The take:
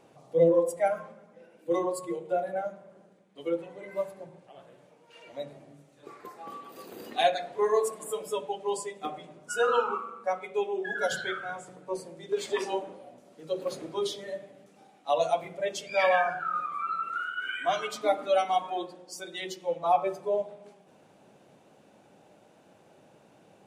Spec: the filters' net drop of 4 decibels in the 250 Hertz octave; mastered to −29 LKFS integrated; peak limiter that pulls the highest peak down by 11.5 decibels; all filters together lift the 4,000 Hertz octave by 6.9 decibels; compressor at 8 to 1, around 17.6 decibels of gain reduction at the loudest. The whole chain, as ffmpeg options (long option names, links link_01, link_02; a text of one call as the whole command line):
ffmpeg -i in.wav -af "equalizer=frequency=250:width_type=o:gain=-7.5,equalizer=frequency=4000:width_type=o:gain=8.5,acompressor=threshold=-38dB:ratio=8,volume=16dB,alimiter=limit=-19dB:level=0:latency=1" out.wav